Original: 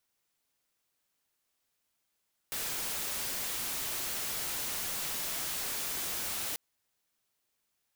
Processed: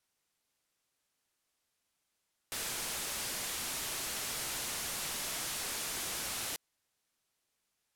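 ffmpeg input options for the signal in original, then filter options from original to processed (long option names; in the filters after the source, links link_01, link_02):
-f lavfi -i "anoisesrc=color=white:amplitude=0.0291:duration=4.04:sample_rate=44100:seed=1"
-af "lowpass=12000"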